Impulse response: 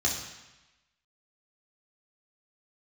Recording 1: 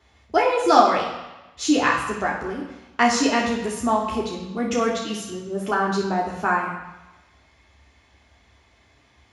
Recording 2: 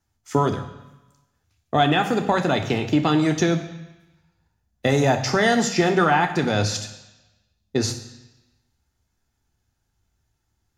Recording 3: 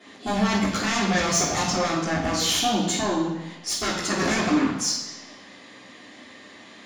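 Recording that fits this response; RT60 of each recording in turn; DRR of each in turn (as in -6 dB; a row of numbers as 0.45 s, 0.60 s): 1; 1.0 s, 1.0 s, 1.0 s; -3.0 dB, 5.5 dB, -11.0 dB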